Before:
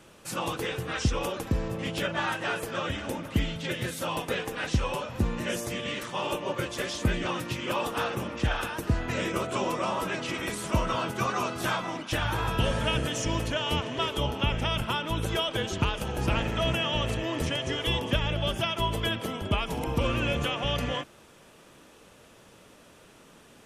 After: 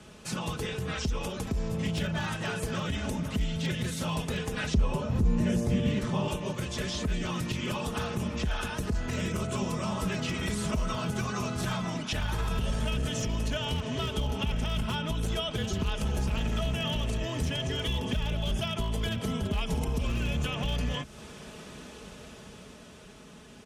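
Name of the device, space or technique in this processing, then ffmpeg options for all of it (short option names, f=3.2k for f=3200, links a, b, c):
FM broadcast chain: -filter_complex "[0:a]highpass=56,lowpass=5.6k,aemphasis=mode=reproduction:type=bsi,dynaudnorm=f=190:g=17:m=9dB,acrossover=split=160|5500[a][b][c];[a]acompressor=threshold=-25dB:ratio=4[d];[b]acompressor=threshold=-35dB:ratio=4[e];[c]acompressor=threshold=-59dB:ratio=4[f];[d][e][f]amix=inputs=3:normalize=0,aemphasis=mode=production:type=50fm,alimiter=limit=-20.5dB:level=0:latency=1:release=24,asoftclip=type=hard:threshold=-23.5dB,lowpass=f=15k:w=0.5412,lowpass=f=15k:w=1.3066,aemphasis=mode=production:type=50fm,aecho=1:1:4.7:0.48,asettb=1/sr,asplit=3[g][h][i];[g]atrim=end=4.744[j];[h]atrim=start=4.74:end=6.28,asetpts=PTS-STARTPTS,afade=t=in:d=0.004:c=qsin,afade=t=out:st=1.536:d=0.004:c=qsin,tiltshelf=f=970:g=6[k];[i]atrim=start=6.276[l];[j][k]acrossfade=d=0.004:c1=hsin:c2=qsin[m];[m][l]acrossfade=d=0.004:c1=qsin:c2=hsin"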